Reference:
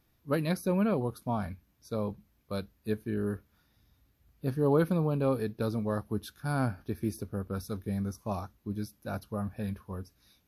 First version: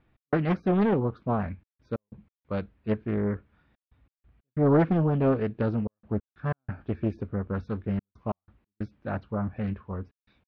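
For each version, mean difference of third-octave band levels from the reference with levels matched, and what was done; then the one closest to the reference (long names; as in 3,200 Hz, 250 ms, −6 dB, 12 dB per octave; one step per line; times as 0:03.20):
7.0 dB: low-pass filter 2,800 Hz 24 dB per octave
gate pattern "x.xxxxxxxx.x." 92 BPM −60 dB
highs frequency-modulated by the lows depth 0.55 ms
level +4.5 dB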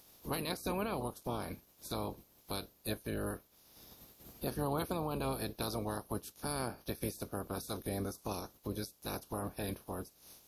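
9.5 dB: ceiling on every frequency bin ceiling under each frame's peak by 25 dB
parametric band 1,800 Hz −11.5 dB 1.7 octaves
downward compressor 2 to 1, threshold −58 dBFS, peak gain reduction 18 dB
level +11 dB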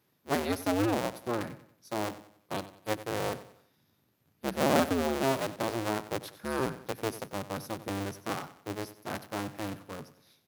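13.0 dB: sub-harmonics by changed cycles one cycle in 2, inverted
high-pass filter 110 Hz 24 dB per octave
on a send: repeating echo 93 ms, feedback 40%, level −15 dB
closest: first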